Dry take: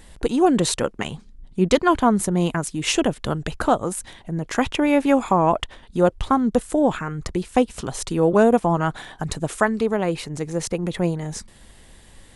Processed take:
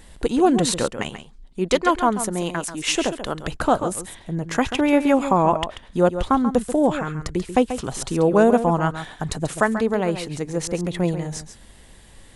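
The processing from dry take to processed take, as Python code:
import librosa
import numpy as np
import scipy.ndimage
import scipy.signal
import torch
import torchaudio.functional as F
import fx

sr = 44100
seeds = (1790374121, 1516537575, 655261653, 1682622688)

y = fx.peak_eq(x, sr, hz=110.0, db=-11.5, octaves=2.1, at=(1.09, 3.44))
y = y + 10.0 ** (-10.5 / 20.0) * np.pad(y, (int(137 * sr / 1000.0), 0))[:len(y)]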